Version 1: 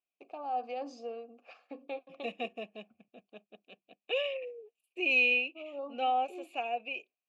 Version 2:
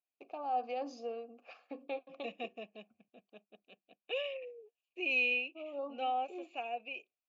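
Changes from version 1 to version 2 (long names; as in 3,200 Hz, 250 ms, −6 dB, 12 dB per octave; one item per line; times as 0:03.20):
second voice −5.0 dB
master: add linear-phase brick-wall low-pass 7,300 Hz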